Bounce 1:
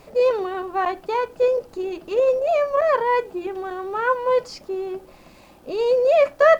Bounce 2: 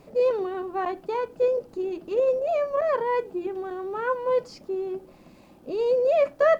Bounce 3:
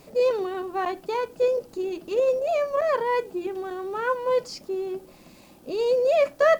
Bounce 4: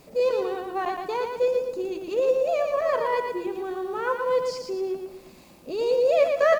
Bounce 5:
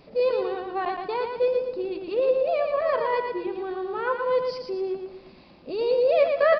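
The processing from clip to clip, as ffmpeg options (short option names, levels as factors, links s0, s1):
-af "equalizer=f=220:t=o:w=2.4:g=9.5,volume=0.376"
-af "highshelf=f=3000:g=11.5"
-af "aecho=1:1:116|232|348|464|580:0.562|0.231|0.0945|0.0388|0.0159,volume=0.841"
-af "aresample=11025,aresample=44100"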